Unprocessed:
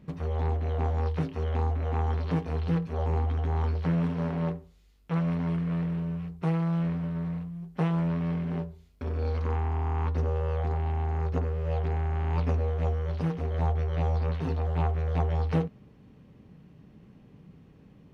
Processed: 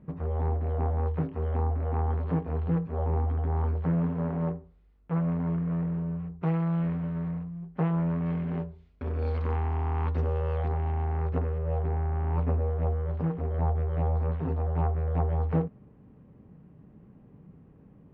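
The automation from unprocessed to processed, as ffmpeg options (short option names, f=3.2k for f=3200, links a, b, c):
-af "asetnsamples=n=441:p=0,asendcmd='6.43 lowpass f 2400;7.31 lowpass f 1800;8.26 lowpass f 2700;9.22 lowpass f 3600;10.68 lowpass f 2300;11.58 lowpass f 1400',lowpass=1.4k"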